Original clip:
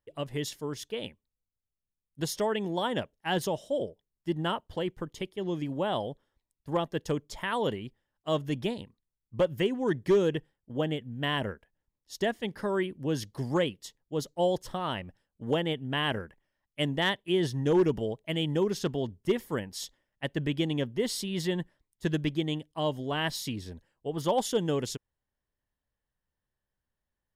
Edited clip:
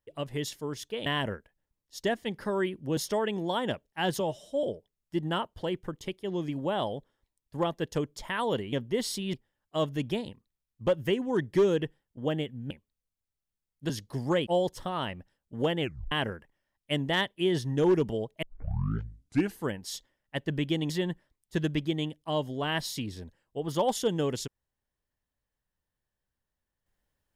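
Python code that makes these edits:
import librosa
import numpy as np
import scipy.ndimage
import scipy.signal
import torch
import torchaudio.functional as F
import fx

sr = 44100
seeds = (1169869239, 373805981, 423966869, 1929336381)

y = fx.edit(x, sr, fx.swap(start_s=1.06, length_s=1.19, other_s=11.23, other_length_s=1.91),
    fx.stretch_span(start_s=3.48, length_s=0.29, factor=1.5),
    fx.cut(start_s=13.71, length_s=0.64),
    fx.tape_stop(start_s=15.69, length_s=0.31),
    fx.tape_start(start_s=18.31, length_s=1.23),
    fx.move(start_s=20.78, length_s=0.61, to_s=7.86), tone=tone)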